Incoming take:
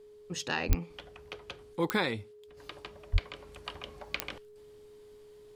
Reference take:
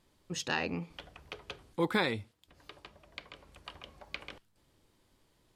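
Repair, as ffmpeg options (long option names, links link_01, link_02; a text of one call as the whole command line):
ffmpeg -i in.wav -filter_complex "[0:a]adeclick=threshold=4,bandreject=frequency=420:width=30,asplit=3[link_01][link_02][link_03];[link_01]afade=type=out:start_time=0.68:duration=0.02[link_04];[link_02]highpass=frequency=140:width=0.5412,highpass=frequency=140:width=1.3066,afade=type=in:start_time=0.68:duration=0.02,afade=type=out:start_time=0.8:duration=0.02[link_05];[link_03]afade=type=in:start_time=0.8:duration=0.02[link_06];[link_04][link_05][link_06]amix=inputs=3:normalize=0,asplit=3[link_07][link_08][link_09];[link_07]afade=type=out:start_time=3.12:duration=0.02[link_10];[link_08]highpass=frequency=140:width=0.5412,highpass=frequency=140:width=1.3066,afade=type=in:start_time=3.12:duration=0.02,afade=type=out:start_time=3.24:duration=0.02[link_11];[link_09]afade=type=in:start_time=3.24:duration=0.02[link_12];[link_10][link_11][link_12]amix=inputs=3:normalize=0,asetnsamples=nb_out_samples=441:pad=0,asendcmd='2.57 volume volume -5.5dB',volume=0dB" out.wav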